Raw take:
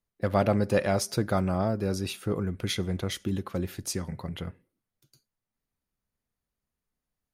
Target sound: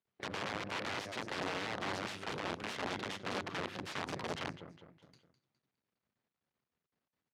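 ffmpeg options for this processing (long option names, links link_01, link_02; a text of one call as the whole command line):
ffmpeg -i in.wav -filter_complex "[0:a]bandreject=frequency=50:width_type=h:width=6,bandreject=frequency=100:width_type=h:width=6,bandreject=frequency=150:width_type=h:width=6,bandreject=frequency=200:width_type=h:width=6,bandreject=frequency=250:width_type=h:width=6,bandreject=frequency=300:width_type=h:width=6,bandreject=frequency=350:width_type=h:width=6,acompressor=threshold=-32dB:ratio=16,asplit=2[link_01][link_02];[link_02]aecho=0:1:206|412|618|824:0.2|0.0898|0.0404|0.0182[link_03];[link_01][link_03]amix=inputs=2:normalize=0,aeval=exprs='max(val(0),0)':channel_layout=same,asplit=2[link_04][link_05];[link_05]asetrate=37084,aresample=44100,atempo=1.18921,volume=-15dB[link_06];[link_04][link_06]amix=inputs=2:normalize=0,aeval=exprs='(mod(53.1*val(0)+1,2)-1)/53.1':channel_layout=same,highpass=130,lowpass=3800,volume=6dB" out.wav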